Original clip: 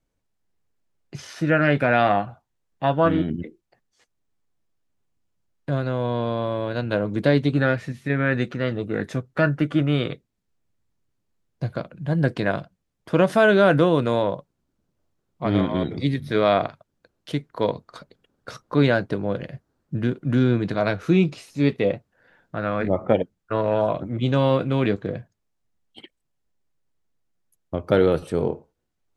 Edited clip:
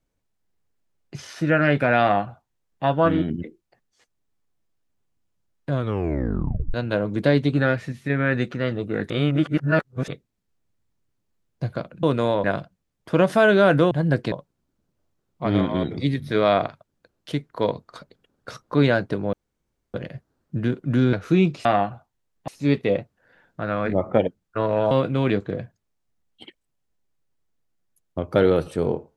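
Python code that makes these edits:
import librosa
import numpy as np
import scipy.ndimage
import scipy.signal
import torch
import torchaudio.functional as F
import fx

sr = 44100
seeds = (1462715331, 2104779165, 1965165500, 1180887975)

y = fx.edit(x, sr, fx.duplicate(start_s=2.01, length_s=0.83, to_s=21.43),
    fx.tape_stop(start_s=5.74, length_s=1.0),
    fx.reverse_span(start_s=9.1, length_s=0.98),
    fx.swap(start_s=12.03, length_s=0.41, other_s=13.91, other_length_s=0.41),
    fx.insert_room_tone(at_s=19.33, length_s=0.61),
    fx.cut(start_s=20.52, length_s=0.39),
    fx.cut(start_s=23.86, length_s=0.61), tone=tone)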